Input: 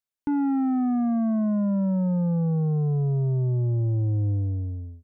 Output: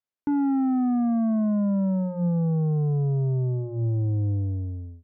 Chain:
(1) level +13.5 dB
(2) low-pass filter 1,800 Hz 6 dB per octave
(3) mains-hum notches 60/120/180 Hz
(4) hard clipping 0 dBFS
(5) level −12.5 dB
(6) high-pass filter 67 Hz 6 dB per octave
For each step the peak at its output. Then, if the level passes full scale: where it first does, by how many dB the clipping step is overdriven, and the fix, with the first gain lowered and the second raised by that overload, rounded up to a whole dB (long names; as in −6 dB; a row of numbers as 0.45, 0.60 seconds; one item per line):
−8.0, −8.0, −5.5, −5.5, −18.0, −19.0 dBFS
no step passes full scale